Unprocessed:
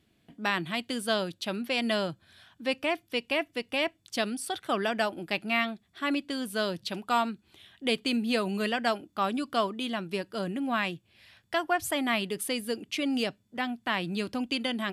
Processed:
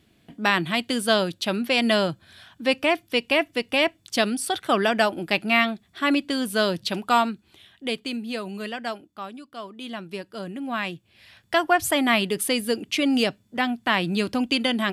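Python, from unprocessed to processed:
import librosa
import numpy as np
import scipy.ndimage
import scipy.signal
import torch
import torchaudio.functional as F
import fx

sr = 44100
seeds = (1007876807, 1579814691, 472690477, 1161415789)

y = fx.gain(x, sr, db=fx.line((7.06, 7.5), (8.23, -3.0), (8.98, -3.0), (9.51, -12.0), (9.91, -1.5), (10.51, -1.5), (11.57, 7.5)))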